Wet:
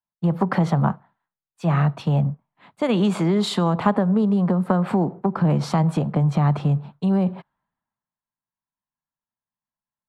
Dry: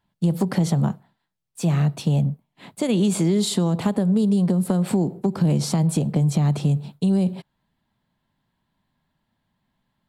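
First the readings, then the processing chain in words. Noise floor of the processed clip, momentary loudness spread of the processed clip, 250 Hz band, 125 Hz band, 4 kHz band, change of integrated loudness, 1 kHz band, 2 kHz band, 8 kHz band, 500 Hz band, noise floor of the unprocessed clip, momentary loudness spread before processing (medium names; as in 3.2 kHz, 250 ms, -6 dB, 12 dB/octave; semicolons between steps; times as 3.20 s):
under -85 dBFS, 6 LU, -0.5 dB, 0.0 dB, -1.0 dB, 0.0 dB, +8.5 dB, +5.5 dB, -11.0 dB, +2.0 dB, -76 dBFS, 7 LU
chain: FFT filter 390 Hz 0 dB, 1.2 kHz +12 dB, 8.4 kHz -16 dB; three bands expanded up and down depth 70%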